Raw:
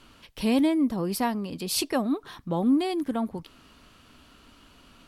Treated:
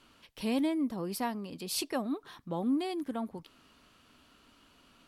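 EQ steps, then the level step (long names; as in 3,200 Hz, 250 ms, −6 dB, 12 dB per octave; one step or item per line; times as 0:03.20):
low-shelf EQ 110 Hz −8 dB
−6.5 dB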